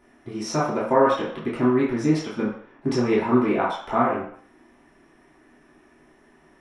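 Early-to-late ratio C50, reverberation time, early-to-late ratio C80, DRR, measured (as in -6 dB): 3.5 dB, 0.55 s, 7.5 dB, -9.5 dB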